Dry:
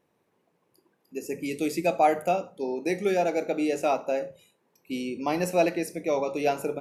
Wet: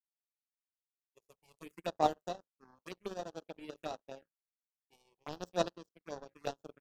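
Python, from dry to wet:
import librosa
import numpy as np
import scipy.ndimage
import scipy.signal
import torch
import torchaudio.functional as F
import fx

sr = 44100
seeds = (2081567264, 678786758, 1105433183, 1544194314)

y = fx.power_curve(x, sr, exponent=3.0)
y = fx.env_phaser(y, sr, low_hz=210.0, high_hz=2200.0, full_db=-41.0)
y = y * 10.0 ** (1.0 / 20.0)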